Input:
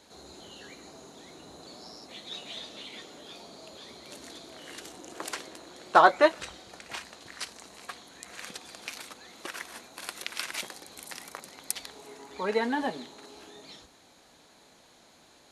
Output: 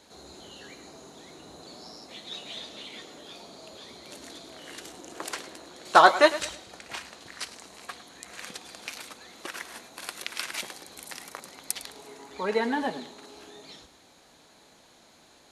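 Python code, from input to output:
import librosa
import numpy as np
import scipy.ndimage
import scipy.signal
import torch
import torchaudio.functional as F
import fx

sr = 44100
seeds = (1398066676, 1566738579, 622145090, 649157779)

y = fx.high_shelf(x, sr, hz=2700.0, db=10.0, at=(5.85, 6.54))
y = fx.echo_feedback(y, sr, ms=106, feedback_pct=31, wet_db=-15)
y = y * 10.0 ** (1.0 / 20.0)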